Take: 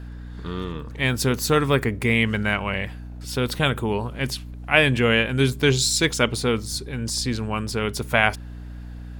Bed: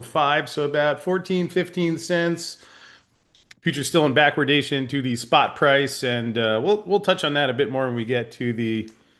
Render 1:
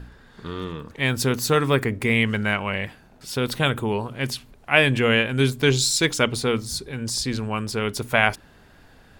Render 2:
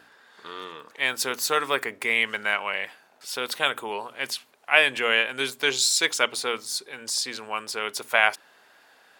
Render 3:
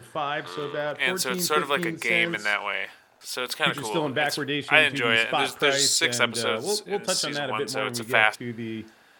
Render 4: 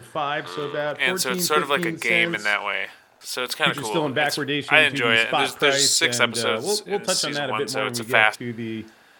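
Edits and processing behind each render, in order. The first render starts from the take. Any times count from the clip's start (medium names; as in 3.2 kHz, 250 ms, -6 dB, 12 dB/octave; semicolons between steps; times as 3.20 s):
de-hum 60 Hz, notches 5
high-pass 640 Hz 12 dB/octave
add bed -9 dB
trim +3 dB; peak limiter -1 dBFS, peak gain reduction 1.5 dB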